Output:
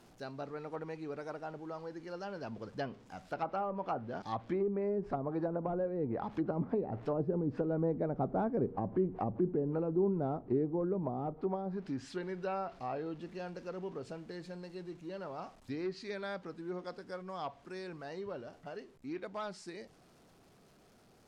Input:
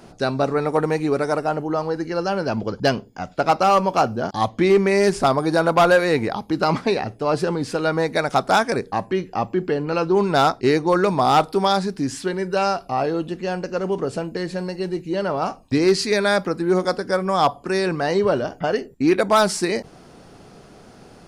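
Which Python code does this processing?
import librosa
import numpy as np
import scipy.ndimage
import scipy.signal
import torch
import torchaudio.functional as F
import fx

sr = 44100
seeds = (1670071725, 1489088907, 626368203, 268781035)

y = x + 0.5 * 10.0 ** (-36.0 / 20.0) * np.sign(x)
y = fx.doppler_pass(y, sr, speed_mps=7, closest_m=9.9, pass_at_s=8.47)
y = fx.env_lowpass_down(y, sr, base_hz=420.0, full_db=-20.5)
y = y * 10.0 ** (-7.0 / 20.0)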